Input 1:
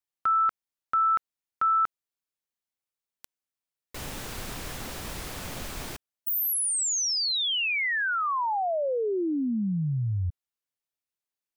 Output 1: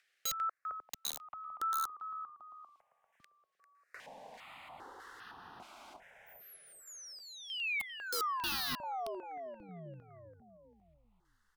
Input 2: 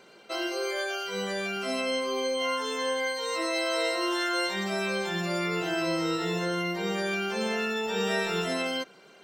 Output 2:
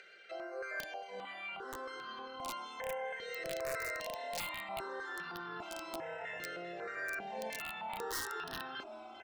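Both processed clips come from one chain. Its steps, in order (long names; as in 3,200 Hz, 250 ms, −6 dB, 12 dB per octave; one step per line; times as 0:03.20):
upward compression, threshold −35 dBFS
auto-filter band-pass square 1.6 Hz 770–1,700 Hz
echo with shifted repeats 396 ms, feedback 51%, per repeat −36 Hz, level −9.5 dB
wrap-around overflow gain 27.5 dB
step-sequenced phaser 2.5 Hz 260–2,200 Hz
level −1 dB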